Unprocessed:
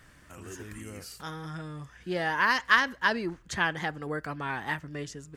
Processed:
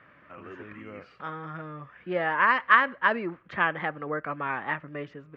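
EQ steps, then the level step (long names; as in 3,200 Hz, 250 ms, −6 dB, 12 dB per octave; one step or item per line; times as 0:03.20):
loudspeaker in its box 150–2,700 Hz, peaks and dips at 570 Hz +7 dB, 1,200 Hz +8 dB, 2,300 Hz +4 dB
0.0 dB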